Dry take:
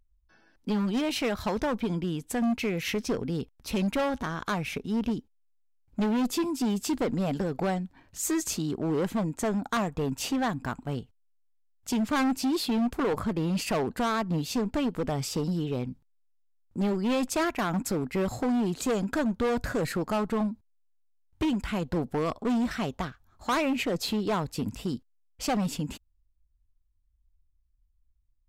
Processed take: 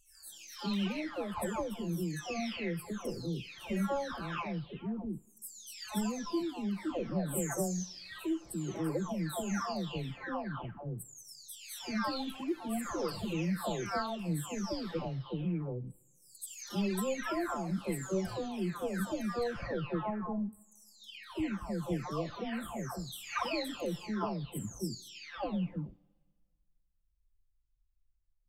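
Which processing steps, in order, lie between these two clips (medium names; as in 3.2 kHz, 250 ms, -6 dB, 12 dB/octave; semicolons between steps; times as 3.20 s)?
delay that grows with frequency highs early, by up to 885 ms; two-slope reverb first 0.5 s, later 1.8 s, from -16 dB, DRR 17.5 dB; trim -4.5 dB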